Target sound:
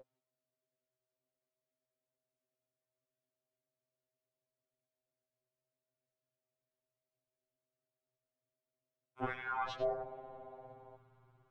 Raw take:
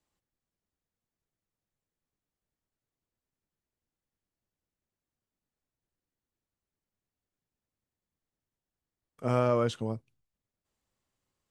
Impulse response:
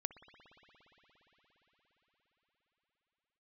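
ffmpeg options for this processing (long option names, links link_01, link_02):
-filter_complex "[0:a]bandreject=frequency=690:width=12,asplit=2[link_01][link_02];[1:a]atrim=start_sample=2205,lowpass=4100,adelay=94[link_03];[link_02][link_03]afir=irnorm=-1:irlink=0,volume=-8dB[link_04];[link_01][link_04]amix=inputs=2:normalize=0,afwtdn=0.00447,aeval=exprs='val(0)*sin(2*PI*180*n/s)':channel_layout=same,afreqshift=25,aemphasis=mode=reproduction:type=50fm,acompressor=threshold=-40dB:ratio=12,aeval=exprs='val(0)+0.00141*sin(2*PI*550*n/s)':channel_layout=same,asubboost=boost=10:cutoff=57,afftfilt=real='re*2.45*eq(mod(b,6),0)':imag='im*2.45*eq(mod(b,6),0)':win_size=2048:overlap=0.75,volume=15dB"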